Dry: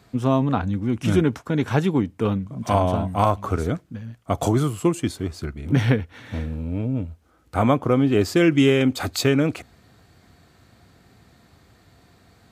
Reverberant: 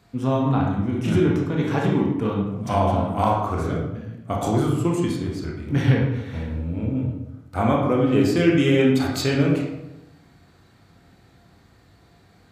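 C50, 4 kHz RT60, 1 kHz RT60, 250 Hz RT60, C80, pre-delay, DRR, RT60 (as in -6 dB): 2.0 dB, 0.60 s, 0.85 s, 1.2 s, 5.5 dB, 21 ms, -2.0 dB, 0.90 s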